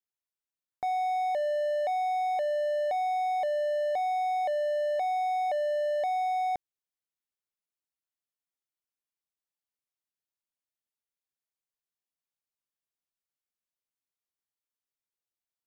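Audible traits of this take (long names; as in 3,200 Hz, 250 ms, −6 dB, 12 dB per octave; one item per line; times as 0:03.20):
background noise floor −94 dBFS
spectral slope −11.5 dB per octave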